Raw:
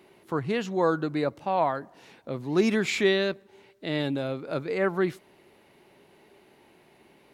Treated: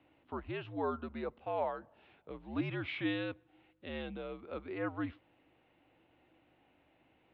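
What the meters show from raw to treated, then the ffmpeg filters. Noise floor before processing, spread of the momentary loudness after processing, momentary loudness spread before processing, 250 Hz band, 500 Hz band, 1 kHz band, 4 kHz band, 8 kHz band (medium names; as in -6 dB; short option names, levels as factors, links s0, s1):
-59 dBFS, 11 LU, 12 LU, -11.0 dB, -13.5 dB, -11.5 dB, -14.0 dB, under -35 dB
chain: -af "equalizer=f=125:t=o:w=1:g=-7,equalizer=f=250:t=o:w=1:g=-12,equalizer=f=500:t=o:w=1:g=-5,equalizer=f=1000:t=o:w=1:g=-4,equalizer=f=2000:t=o:w=1:g=-9,aeval=exprs='val(0)+0.000398*(sin(2*PI*50*n/s)+sin(2*PI*2*50*n/s)/2+sin(2*PI*3*50*n/s)/3+sin(2*PI*4*50*n/s)/4+sin(2*PI*5*50*n/s)/5)':c=same,highpass=f=150:t=q:w=0.5412,highpass=f=150:t=q:w=1.307,lowpass=f=3100:t=q:w=0.5176,lowpass=f=3100:t=q:w=0.7071,lowpass=f=3100:t=q:w=1.932,afreqshift=-77,volume=0.708"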